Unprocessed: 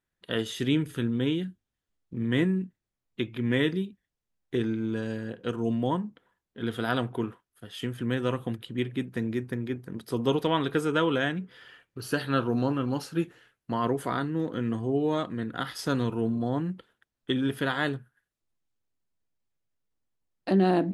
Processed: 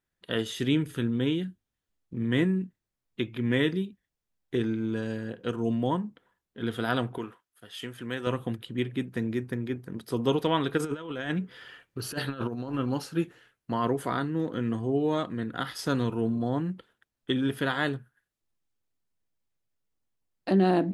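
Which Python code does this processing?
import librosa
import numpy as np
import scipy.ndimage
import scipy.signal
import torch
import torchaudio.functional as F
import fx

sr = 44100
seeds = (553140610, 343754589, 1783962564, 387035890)

y = fx.low_shelf(x, sr, hz=350.0, db=-11.0, at=(7.18, 8.27))
y = fx.over_compress(y, sr, threshold_db=-30.0, ratio=-0.5, at=(10.77, 12.77), fade=0.02)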